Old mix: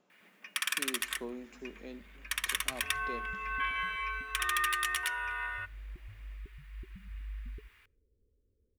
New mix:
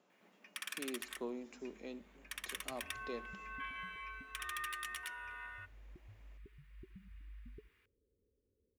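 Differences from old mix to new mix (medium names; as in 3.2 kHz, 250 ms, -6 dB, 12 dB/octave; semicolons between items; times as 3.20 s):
first sound -11.5 dB; master: add high-pass 180 Hz 6 dB/octave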